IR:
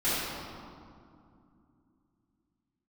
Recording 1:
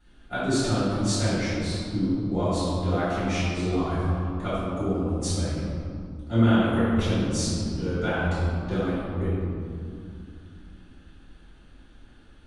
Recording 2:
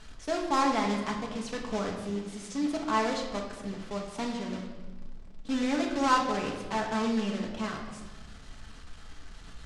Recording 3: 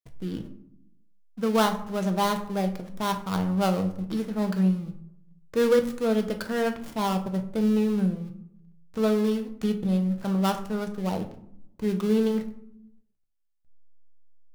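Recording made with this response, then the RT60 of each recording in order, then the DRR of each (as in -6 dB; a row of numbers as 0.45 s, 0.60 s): 1; 2.5 s, 1.3 s, 0.70 s; -14.5 dB, -0.5 dB, 5.0 dB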